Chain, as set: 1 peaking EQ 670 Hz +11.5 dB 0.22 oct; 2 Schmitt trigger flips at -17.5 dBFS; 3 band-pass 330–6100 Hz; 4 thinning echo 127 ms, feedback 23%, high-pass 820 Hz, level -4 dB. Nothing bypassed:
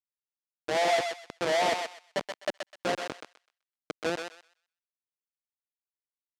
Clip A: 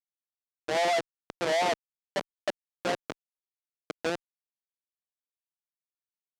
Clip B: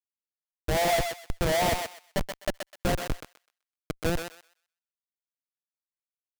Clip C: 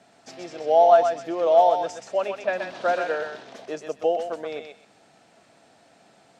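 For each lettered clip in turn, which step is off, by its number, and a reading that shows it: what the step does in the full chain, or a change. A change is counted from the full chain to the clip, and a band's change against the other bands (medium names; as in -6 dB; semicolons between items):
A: 4, echo-to-direct -5.5 dB to none; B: 3, 125 Hz band +14.5 dB; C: 2, 4 kHz band -12.0 dB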